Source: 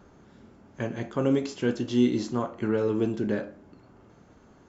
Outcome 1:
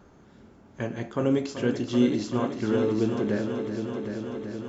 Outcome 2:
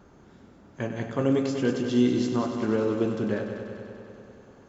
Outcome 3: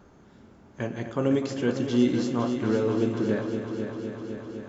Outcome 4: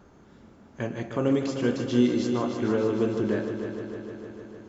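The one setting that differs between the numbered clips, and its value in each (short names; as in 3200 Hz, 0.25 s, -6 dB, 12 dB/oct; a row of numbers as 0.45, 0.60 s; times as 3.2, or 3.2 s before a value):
multi-head echo, time: 382, 97, 254, 152 ms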